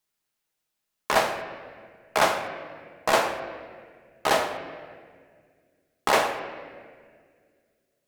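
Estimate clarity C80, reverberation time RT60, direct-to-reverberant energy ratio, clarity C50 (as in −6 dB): 9.5 dB, 1.9 s, 4.5 dB, 8.0 dB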